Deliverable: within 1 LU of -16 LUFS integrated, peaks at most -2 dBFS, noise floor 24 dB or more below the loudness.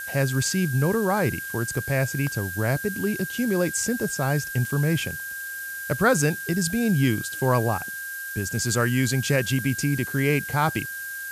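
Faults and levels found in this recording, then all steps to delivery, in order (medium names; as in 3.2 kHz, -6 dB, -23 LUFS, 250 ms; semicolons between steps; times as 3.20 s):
steady tone 1.6 kHz; tone level -32 dBFS; noise floor -34 dBFS; noise floor target -49 dBFS; loudness -24.5 LUFS; peak level -7.0 dBFS; loudness target -16.0 LUFS
-> band-stop 1.6 kHz, Q 30; noise print and reduce 15 dB; trim +8.5 dB; peak limiter -2 dBFS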